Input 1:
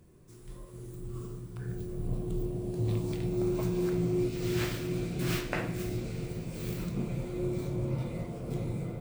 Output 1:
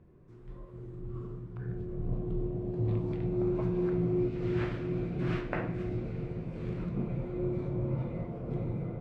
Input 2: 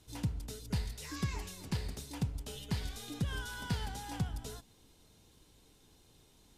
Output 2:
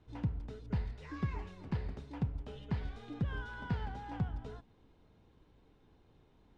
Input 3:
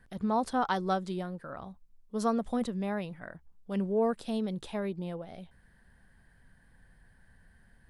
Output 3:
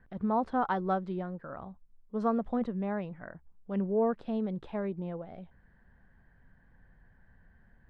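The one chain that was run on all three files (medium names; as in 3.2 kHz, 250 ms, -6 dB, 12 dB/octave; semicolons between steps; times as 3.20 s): low-pass 1.8 kHz 12 dB/octave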